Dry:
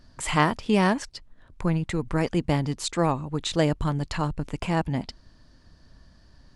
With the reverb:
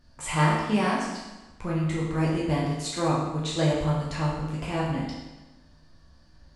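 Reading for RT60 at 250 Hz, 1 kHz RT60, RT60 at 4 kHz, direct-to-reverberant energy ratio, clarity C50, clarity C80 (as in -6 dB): 1.1 s, 1.1 s, 1.0 s, -5.5 dB, 1.5 dB, 3.5 dB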